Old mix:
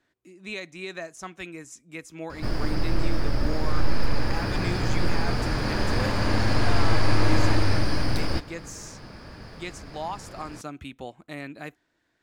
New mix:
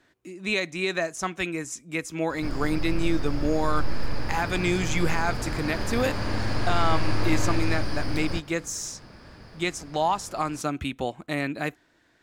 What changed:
speech +9.0 dB
background −4.5 dB

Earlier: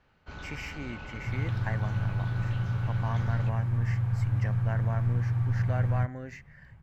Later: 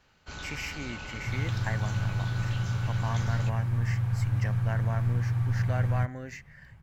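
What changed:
first sound: remove high-frequency loss of the air 110 metres
master: add high-shelf EQ 3,100 Hz +9.5 dB

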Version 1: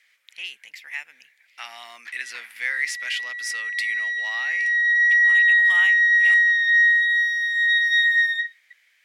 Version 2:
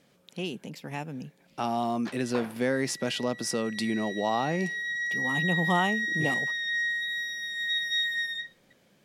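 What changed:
first sound +6.0 dB
master: remove high-pass with resonance 2,000 Hz, resonance Q 5.9

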